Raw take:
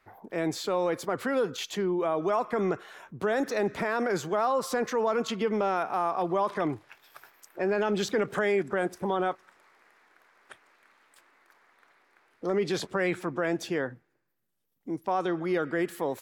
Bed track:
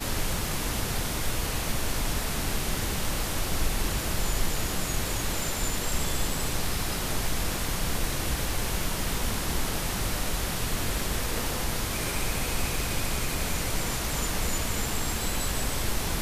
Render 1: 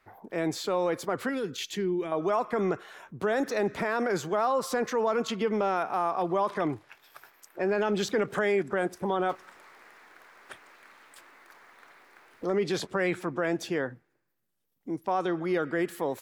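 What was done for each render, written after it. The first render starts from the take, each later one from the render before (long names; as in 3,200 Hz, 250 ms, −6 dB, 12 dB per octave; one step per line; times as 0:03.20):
0:01.29–0:02.12: flat-topped bell 820 Hz −10.5 dB
0:09.29–0:12.45: mu-law and A-law mismatch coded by mu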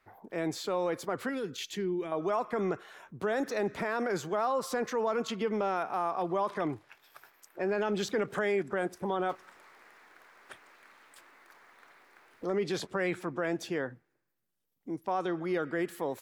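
level −3.5 dB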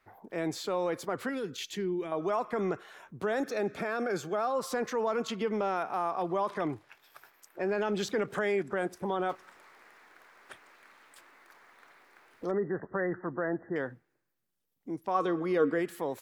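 0:03.44–0:04.56: notch comb filter 990 Hz
0:12.51–0:13.76: linear-phase brick-wall low-pass 2,000 Hz
0:15.14–0:15.78: hollow resonant body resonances 280/460/1,100 Hz, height 16 dB → 13 dB, ringing for 90 ms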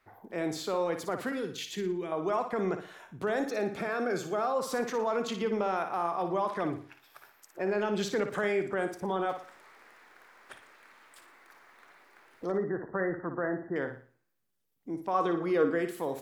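flutter between parallel walls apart 9.9 metres, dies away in 0.41 s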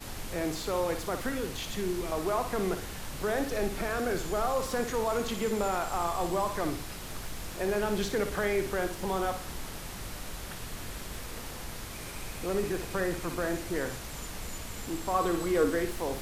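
mix in bed track −11 dB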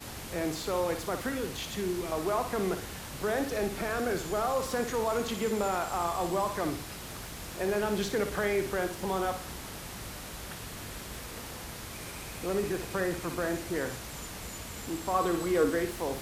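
high-pass filter 51 Hz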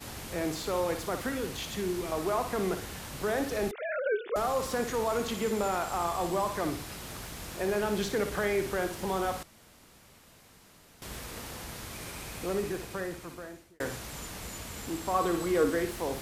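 0:03.71–0:04.36: three sine waves on the formant tracks
0:09.43–0:11.02: fill with room tone
0:12.42–0:13.80: fade out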